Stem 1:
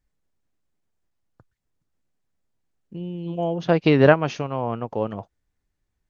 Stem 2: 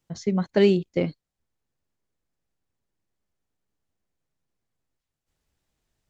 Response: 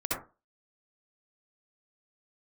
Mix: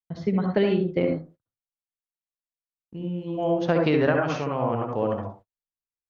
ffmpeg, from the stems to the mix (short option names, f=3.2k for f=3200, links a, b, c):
-filter_complex "[0:a]equalizer=f=1.6k:t=o:w=0.77:g=2.5,volume=-5.5dB,asplit=2[a][b];[b]volume=-4.5dB[c];[1:a]lowpass=f=3.8k:w=0.5412,lowpass=f=3.8k:w=1.3066,volume=-2.5dB,asplit=2[d][e];[e]volume=-5.5dB[f];[2:a]atrim=start_sample=2205[g];[c][f]amix=inputs=2:normalize=0[h];[h][g]afir=irnorm=-1:irlink=0[i];[a][d][i]amix=inputs=3:normalize=0,agate=range=-37dB:threshold=-46dB:ratio=16:detection=peak,acompressor=threshold=-17dB:ratio=12"